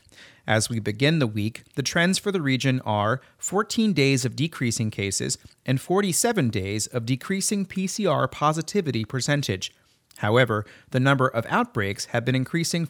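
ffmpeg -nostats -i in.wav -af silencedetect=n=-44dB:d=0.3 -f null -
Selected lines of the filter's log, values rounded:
silence_start: 9.73
silence_end: 10.11 | silence_duration: 0.38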